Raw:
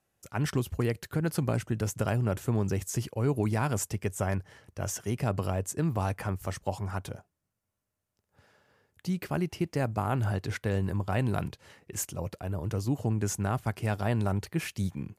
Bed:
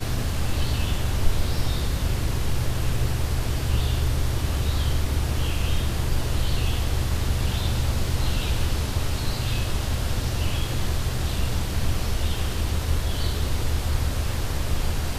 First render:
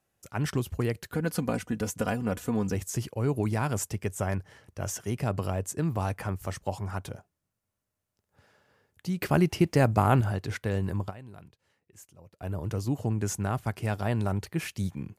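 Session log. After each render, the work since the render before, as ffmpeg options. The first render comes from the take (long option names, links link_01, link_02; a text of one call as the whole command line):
ffmpeg -i in.wav -filter_complex "[0:a]asettb=1/sr,asplit=3[link_01][link_02][link_03];[link_01]atrim=end=1.124[link_04];[link_02]atrim=start=1.12:end=2.75,asetpts=PTS-STARTPTS,afade=type=in:duration=0.004:curve=qsin,afade=type=out:start_time=1.626:duration=0.004:curve=qsin,aecho=1:1:4.1:0.65,atrim=end_sample=71883[link_05];[link_03]atrim=start=2.746[link_06];[link_04][link_05]acrossfade=duration=0.004:curve1=hsin:curve2=qsin[link_07];[link_07][link_06]acrossfade=duration=0.004:curve1=qsin:curve2=hsin,asettb=1/sr,asplit=3[link_08][link_09][link_10];[link_08]atrim=end=9.214[link_11];[link_09]atrim=start=9.21:end=10.21,asetpts=PTS-STARTPTS,afade=type=in:duration=0.004:curve=qsin,afade=type=out:start_time=0.996:duration=0.004:curve=qsin,acontrast=87[link_12];[link_10]atrim=start=10.206[link_13];[link_11][link_12]acrossfade=duration=0.004:curve1=hsin:curve2=qsin[link_14];[link_14][link_13]acrossfade=duration=0.004:curve1=qsin:curve2=hsin,asplit=3[link_15][link_16][link_17];[link_15]atrim=end=11.22,asetpts=PTS-STARTPTS,afade=type=out:start_time=11.09:duration=0.13:curve=exp:silence=0.125893[link_18];[link_16]atrim=start=11.22:end=12.29,asetpts=PTS-STARTPTS,volume=-18dB[link_19];[link_17]atrim=start=12.29,asetpts=PTS-STARTPTS,afade=type=in:duration=0.13:curve=exp:silence=0.125893[link_20];[link_18][link_19][link_20]concat=n=3:v=0:a=1" out.wav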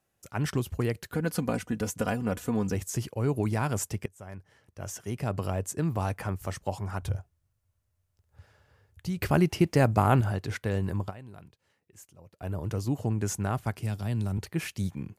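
ffmpeg -i in.wav -filter_complex "[0:a]asettb=1/sr,asplit=3[link_01][link_02][link_03];[link_01]atrim=end=7.024[link_04];[link_02]atrim=start=7.02:end=9.31,asetpts=PTS-STARTPTS,afade=type=in:duration=0.004:curve=qsin,afade=type=out:start_time=2.286:duration=0.004:curve=qsin,lowshelf=frequency=130:width_type=q:width=1.5:gain=13[link_05];[link_03]atrim=start=9.306[link_06];[link_04][link_05]acrossfade=duration=0.004:curve1=hsin:curve2=qsin[link_07];[link_07][link_06]acrossfade=duration=0.004:curve1=qsin:curve2=hsin,asettb=1/sr,asplit=3[link_08][link_09][link_10];[link_08]atrim=end=13.774[link_11];[link_09]atrim=start=13.77:end=14.38,asetpts=PTS-STARTPTS,afade=type=in:duration=0.004:curve=qsin,afade=type=out:start_time=0.606:duration=0.004:curve=qsin,acrossover=split=270|3000[link_12][link_13][link_14];[link_13]acompressor=threshold=-60dB:ratio=1.5:attack=3.2:release=140:knee=2.83:detection=peak[link_15];[link_12][link_15][link_14]amix=inputs=3:normalize=0[link_16];[link_10]atrim=start=14.376[link_17];[link_11][link_16]acrossfade=duration=0.004:curve1=hsin:curve2=qsin[link_18];[link_18][link_17]acrossfade=duration=0.004:curve1=qsin:curve2=hsin,asplit=2[link_19][link_20];[link_19]atrim=end=4.06,asetpts=PTS-STARTPTS,afade=type=out:start_time=4.056:duration=0.004:curve=hsin:silence=0.0668344[link_21];[link_20]atrim=start=4.06,asetpts=PTS-STARTPTS,afade=type=in:duration=1.49:silence=0.0668344[link_22];[link_21][link_22]concat=n=2:v=0:a=1" out.wav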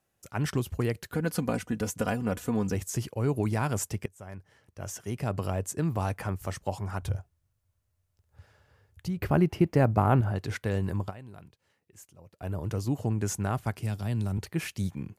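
ffmpeg -i in.wav -filter_complex "[0:a]asettb=1/sr,asplit=3[link_01][link_02][link_03];[link_01]atrim=end=9.084[link_04];[link_02]atrim=start=9.08:end=10.36,asetpts=PTS-STARTPTS,afade=type=in:duration=0.004:curve=qsin,afade=type=out:start_time=1.276:duration=0.004:curve=qsin,equalizer=frequency=7200:width_type=o:width=2.7:gain=-11.5[link_05];[link_03]atrim=start=10.356[link_06];[link_04][link_05]acrossfade=duration=0.004:curve1=hsin:curve2=qsin[link_07];[link_07][link_06]acrossfade=duration=0.004:curve1=qsin:curve2=hsin" out.wav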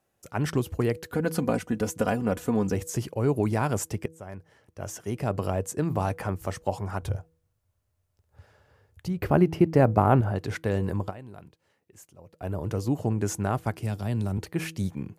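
ffmpeg -i in.wav -af "equalizer=frequency=490:width_type=o:width=2.6:gain=5,bandreject=frequency=161.8:width_type=h:width=4,bandreject=frequency=323.6:width_type=h:width=4,bandreject=frequency=485.4:width_type=h:width=4" out.wav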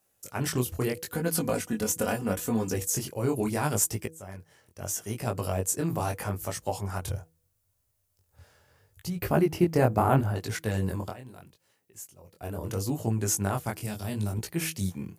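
ffmpeg -i in.wav -af "crystalizer=i=3:c=0,flanger=delay=17.5:depth=6.7:speed=0.76" out.wav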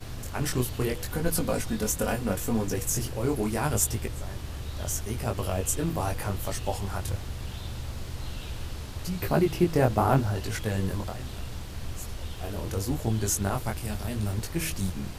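ffmpeg -i in.wav -i bed.wav -filter_complex "[1:a]volume=-12dB[link_01];[0:a][link_01]amix=inputs=2:normalize=0" out.wav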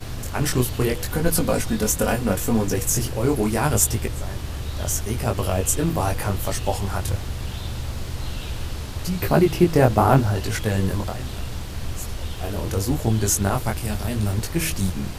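ffmpeg -i in.wav -af "volume=6.5dB" out.wav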